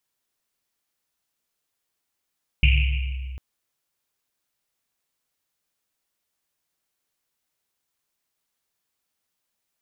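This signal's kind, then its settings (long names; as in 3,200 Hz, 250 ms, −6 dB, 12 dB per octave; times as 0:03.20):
drum after Risset length 0.75 s, pitch 65 Hz, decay 2.52 s, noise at 2,600 Hz, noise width 680 Hz, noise 25%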